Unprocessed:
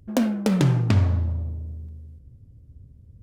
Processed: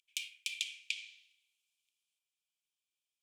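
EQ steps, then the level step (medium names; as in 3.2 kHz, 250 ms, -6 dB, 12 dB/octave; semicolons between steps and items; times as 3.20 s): rippled Chebyshev high-pass 2.3 kHz, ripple 6 dB; tilt EQ -4.5 dB/octave; +10.5 dB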